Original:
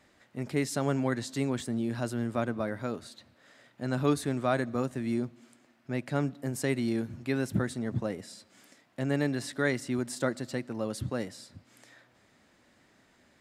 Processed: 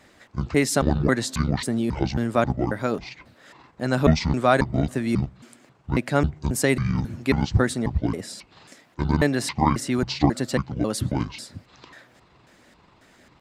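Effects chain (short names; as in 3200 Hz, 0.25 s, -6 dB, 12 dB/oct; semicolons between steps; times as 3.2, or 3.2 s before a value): trilling pitch shifter -10.5 st, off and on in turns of 0.271 s; harmonic-percussive split percussive +5 dB; gain +6.5 dB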